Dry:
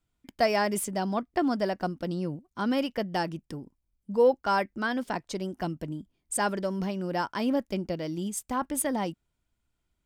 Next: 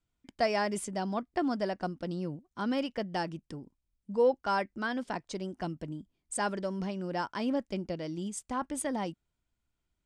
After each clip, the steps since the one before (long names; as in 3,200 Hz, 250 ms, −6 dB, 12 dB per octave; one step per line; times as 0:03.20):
low-pass filter 9,300 Hz 24 dB per octave
level −4 dB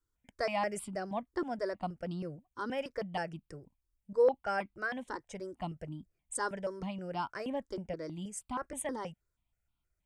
step-sequenced phaser 6.3 Hz 690–1,800 Hz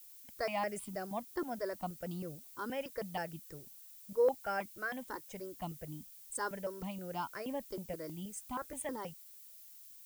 background noise violet −52 dBFS
level −3 dB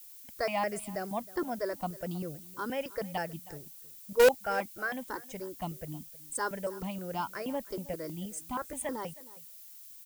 in parallel at −6.5 dB: bit reduction 4 bits
on the sum: single-tap delay 316 ms −19.5 dB
level +4.5 dB